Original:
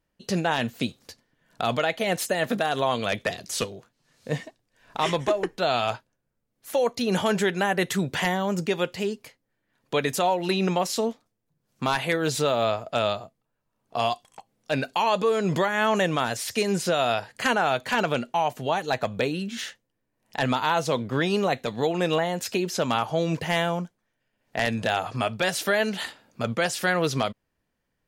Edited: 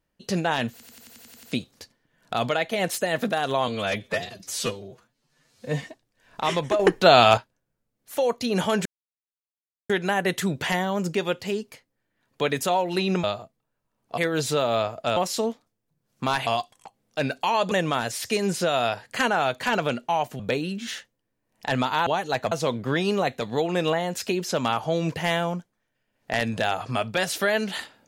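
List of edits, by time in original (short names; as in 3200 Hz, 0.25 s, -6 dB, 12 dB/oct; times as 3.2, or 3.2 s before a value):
0.71 stutter 0.09 s, 9 plays
2.96–4.39 stretch 1.5×
5.36–5.94 gain +9.5 dB
7.42 insert silence 1.04 s
10.76–12.06 swap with 13.05–13.99
15.24–15.97 cut
18.65–19.1 move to 20.77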